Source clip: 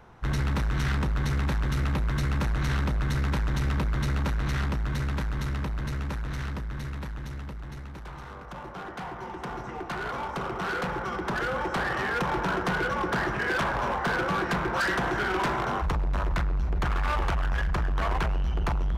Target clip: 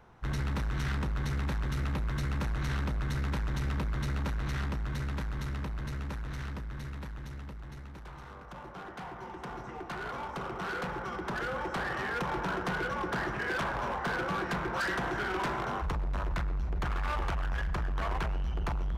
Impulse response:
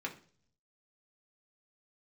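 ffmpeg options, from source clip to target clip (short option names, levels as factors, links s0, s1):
-filter_complex "[0:a]asplit=2[s0][s1];[1:a]atrim=start_sample=2205,adelay=120[s2];[s1][s2]afir=irnorm=-1:irlink=0,volume=0.0841[s3];[s0][s3]amix=inputs=2:normalize=0,volume=0.531"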